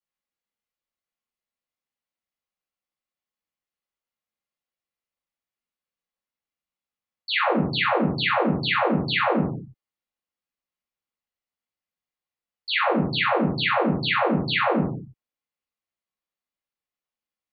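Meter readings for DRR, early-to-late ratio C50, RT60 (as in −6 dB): −12.0 dB, 3.5 dB, non-exponential decay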